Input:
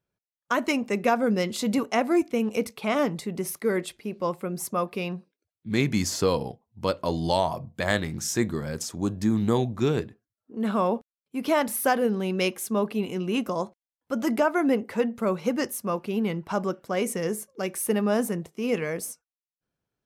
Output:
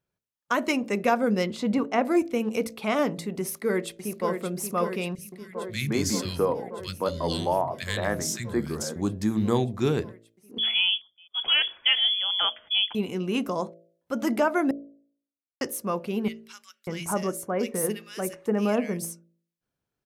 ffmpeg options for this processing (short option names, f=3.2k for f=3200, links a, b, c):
-filter_complex "[0:a]asettb=1/sr,asplit=3[a][b][c];[a]atrim=end=1.464[d];[b]atrim=start=1.46:end=2.05,asetpts=PTS-STARTPTS,afade=t=in:d=0.004:c=qsin,afade=t=out:st=0.586:d=0.004:c=qsin,aemphasis=mode=reproduction:type=75fm[e];[c]atrim=start=2.046[f];[d][e]acrossfade=d=0.004:c1=hsin:c2=qsin[g];[g][f]acrossfade=d=0.004:c1=qsin:c2=hsin,asplit=2[h][i];[i]afade=t=in:st=3.41:d=0.01,afade=t=out:st=4.31:d=0.01,aecho=0:1:580|1160|1740|2320|2900|3480|4060|4640|5220|5800|6380|6960:0.473151|0.378521|0.302817|0.242253|0.193803|0.155042|0.124034|0.099227|0.0793816|0.0635053|0.0508042|0.0406434[j];[h][j]amix=inputs=2:normalize=0,asettb=1/sr,asplit=3[k][l][m];[k]atrim=end=5.154[n];[l]atrim=start=5.15:end=8.96,asetpts=PTS-STARTPTS,afade=t=in:d=0.004:c=qsin,afade=t=out:st=3.806:d=0.004:c=qsin,acrossover=split=180|1800[o][p][q];[o]adelay=30[r];[p]adelay=170[s];[r][s][q]amix=inputs=3:normalize=0,atrim=end_sample=168021[t];[m]atrim=start=8.956[u];[n][t]acrossfade=d=0.004:c1=hsin:c2=qsin[v];[v][u]acrossfade=d=0.004:c1=qsin:c2=hsin,asettb=1/sr,asplit=3[w][x][y];[w]atrim=end=10.584[z];[x]atrim=start=10.58:end=12.95,asetpts=PTS-STARTPTS,afade=t=in:d=0.004:c=qsin,afade=t=out:st=2.366:d=0.004:c=qsin,lowpass=f=3.1k:t=q:w=0.5098,lowpass=f=3.1k:t=q:w=0.6013,lowpass=f=3.1k:t=q:w=0.9,lowpass=f=3.1k:t=q:w=2.563,afreqshift=-3600[aa];[y]atrim=start=12.946[ab];[z][aa]acrossfade=d=0.004:c1=hsin:c2=qsin[ac];[ac][ab]acrossfade=d=0.004:c1=qsin:c2=hsin,asettb=1/sr,asplit=3[ad][ae][af];[ad]atrim=end=16.284[ag];[ae]atrim=start=16.28:end=19.05,asetpts=PTS-STARTPTS,afade=t=in:d=0.004:c=qsin,afade=t=out:st=2.766:d=0.004:c=qsin,acrossover=split=2000[ah][ai];[ah]adelay=590[aj];[aj][ai]amix=inputs=2:normalize=0,atrim=end_sample=122157[ak];[af]atrim=start=19.046[al];[ag][ak]acrossfade=d=0.004:c1=hsin:c2=qsin[am];[am][al]acrossfade=d=0.004:c1=qsin:c2=hsin,asplit=3[an][ao][ap];[an]atrim=end=14.71,asetpts=PTS-STARTPTS,afade=t=out:st=14.706:d=0.004:c=hsin[aq];[ao]atrim=start=14.71:end=15.61,asetpts=PTS-STARTPTS,volume=0[ar];[ap]atrim=start=15.61,asetpts=PTS-STARTPTS,afade=t=in:d=0.004:c=hsin[as];[aq][ar][as]concat=n=3:v=0:a=1,bandreject=f=56.14:t=h:w=4,bandreject=f=112.28:t=h:w=4,bandreject=f=168.42:t=h:w=4,bandreject=f=224.56:t=h:w=4,bandreject=f=280.7:t=h:w=4,bandreject=f=336.84:t=h:w=4,bandreject=f=392.98:t=h:w=4,bandreject=f=449.12:t=h:w=4,bandreject=f=505.26:t=h:w=4,bandreject=f=561.4:t=h:w=4,bandreject=f=617.54:t=h:w=4,bandreject=f=673.68:t=h:w=4"